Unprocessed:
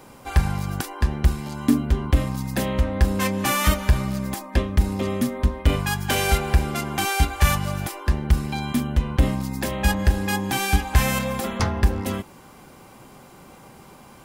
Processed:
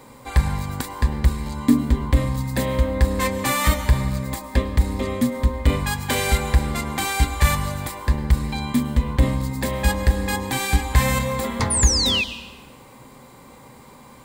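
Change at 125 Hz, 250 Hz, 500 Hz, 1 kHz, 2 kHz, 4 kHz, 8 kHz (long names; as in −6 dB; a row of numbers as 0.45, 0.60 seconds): +1.0, +1.0, +1.5, +0.5, +1.0, +4.5, +5.0 decibels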